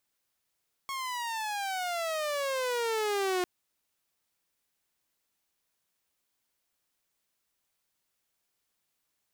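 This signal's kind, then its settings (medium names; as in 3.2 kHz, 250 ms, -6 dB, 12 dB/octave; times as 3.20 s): gliding synth tone saw, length 2.55 s, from 1.1 kHz, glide -19.5 st, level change +6.5 dB, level -24 dB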